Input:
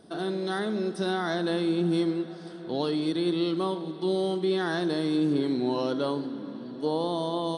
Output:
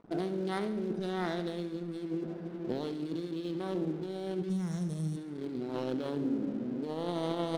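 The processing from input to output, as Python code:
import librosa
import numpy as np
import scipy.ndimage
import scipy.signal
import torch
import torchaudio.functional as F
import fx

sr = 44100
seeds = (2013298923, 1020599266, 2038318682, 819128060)

y = fx.wiener(x, sr, points=41)
y = fx.spec_box(y, sr, start_s=4.49, length_s=0.68, low_hz=220.0, high_hz=5300.0, gain_db=-20)
y = fx.over_compress(y, sr, threshold_db=-34.0, ratio=-1.0)
y = np.sign(y) * np.maximum(np.abs(y) - 10.0 ** (-52.0 / 20.0), 0.0)
y = fx.echo_feedback(y, sr, ms=70, feedback_pct=58, wet_db=-12.5)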